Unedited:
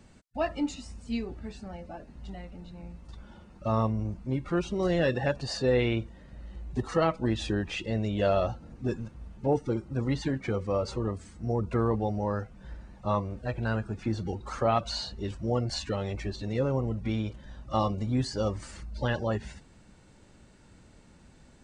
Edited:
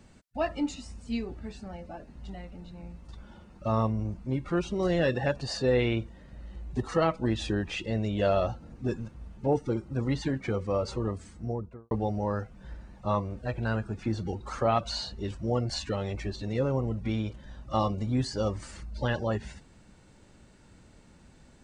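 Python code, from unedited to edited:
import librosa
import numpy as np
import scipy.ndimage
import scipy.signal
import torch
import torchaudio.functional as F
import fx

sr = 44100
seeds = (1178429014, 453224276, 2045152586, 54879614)

y = fx.studio_fade_out(x, sr, start_s=11.28, length_s=0.63)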